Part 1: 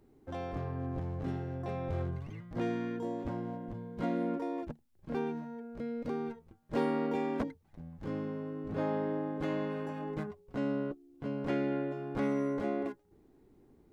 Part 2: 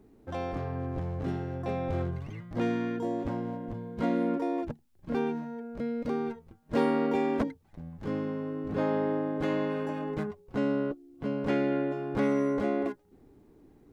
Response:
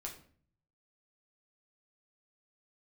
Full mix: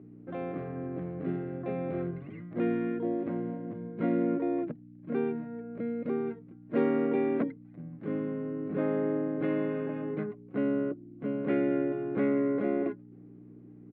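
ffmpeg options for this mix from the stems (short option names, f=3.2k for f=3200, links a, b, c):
-filter_complex "[0:a]volume=-13.5dB,asplit=2[a][b];[b]volume=-10dB[c];[1:a]adelay=0.5,volume=-1.5dB[d];[2:a]atrim=start_sample=2205[e];[c][e]afir=irnorm=-1:irlink=0[f];[a][d][f]amix=inputs=3:normalize=0,equalizer=f=190:t=o:w=0.36:g=9.5,aeval=exprs='val(0)+0.01*(sin(2*PI*60*n/s)+sin(2*PI*2*60*n/s)/2+sin(2*PI*3*60*n/s)/3+sin(2*PI*4*60*n/s)/4+sin(2*PI*5*60*n/s)/5)':c=same,highpass=f=150:w=0.5412,highpass=f=150:w=1.3066,equalizer=f=200:t=q:w=4:g=-8,equalizer=f=350:t=q:w=4:g=4,equalizer=f=890:t=q:w=4:g=-9,equalizer=f=1.7k:t=q:w=4:g=-3,lowpass=f=2.5k:w=0.5412,lowpass=f=2.5k:w=1.3066"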